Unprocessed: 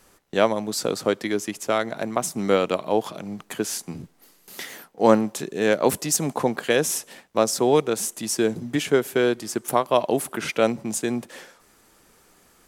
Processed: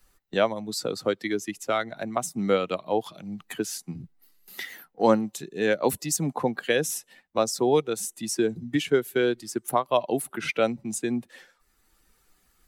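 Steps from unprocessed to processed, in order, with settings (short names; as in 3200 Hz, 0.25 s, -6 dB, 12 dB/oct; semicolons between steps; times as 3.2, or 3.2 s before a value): per-bin expansion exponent 1.5; three-band squash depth 40%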